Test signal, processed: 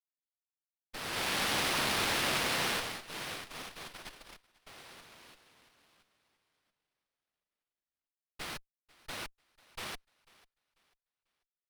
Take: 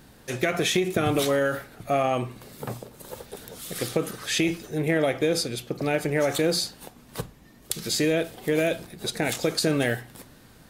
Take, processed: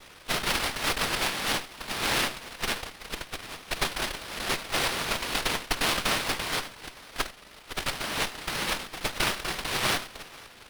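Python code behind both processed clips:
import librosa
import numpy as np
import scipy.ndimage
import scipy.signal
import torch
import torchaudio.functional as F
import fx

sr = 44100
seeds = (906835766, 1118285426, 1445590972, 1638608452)

p1 = scipy.ndimage.median_filter(x, 25, mode='constant')
p2 = fx.level_steps(p1, sr, step_db=12)
p3 = p1 + (p2 * 10.0 ** (0.0 / 20.0))
p4 = fx.noise_vocoder(p3, sr, seeds[0], bands=1)
p5 = fx.over_compress(p4, sr, threshold_db=-25.0, ratio=-1.0)
p6 = p5 + fx.echo_thinned(p5, sr, ms=493, feedback_pct=31, hz=360.0, wet_db=-23, dry=0)
p7 = fx.running_max(p6, sr, window=5)
y = p7 * 10.0 ** (-1.5 / 20.0)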